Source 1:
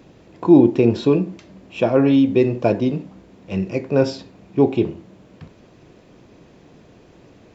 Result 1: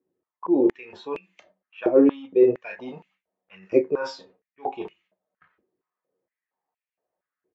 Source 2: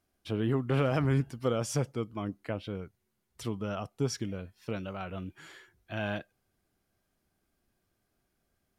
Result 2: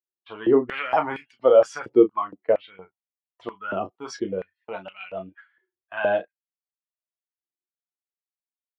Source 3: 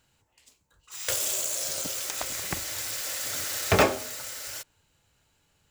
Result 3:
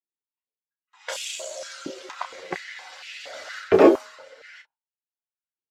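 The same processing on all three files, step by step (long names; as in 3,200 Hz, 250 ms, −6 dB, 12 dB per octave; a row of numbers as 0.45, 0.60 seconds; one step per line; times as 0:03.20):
spectral dynamics exaggerated over time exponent 1.5
high-shelf EQ 4,800 Hz −4 dB
on a send: ambience of single reflections 11 ms −8.5 dB, 32 ms −9 dB
on the sum: noise gate with hold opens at −44 dBFS
reversed playback
downward compressor 12 to 1, threshold −24 dBFS
reversed playback
low-pass that shuts in the quiet parts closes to 2,100 Hz, open at −25.5 dBFS
spectral tilt −3 dB per octave
high-pass on a step sequencer 4.3 Hz 360–2,500 Hz
loudness normalisation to −23 LKFS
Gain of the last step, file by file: +3.5, +9.5, +7.0 decibels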